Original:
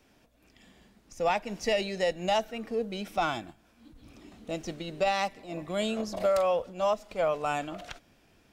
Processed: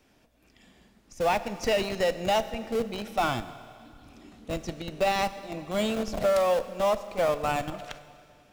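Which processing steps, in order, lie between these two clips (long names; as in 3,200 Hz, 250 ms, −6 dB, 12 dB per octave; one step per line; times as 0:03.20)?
in parallel at −3 dB: comparator with hysteresis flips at −29.5 dBFS
on the sum: four-comb reverb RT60 2.3 s, combs from 27 ms, DRR 13 dB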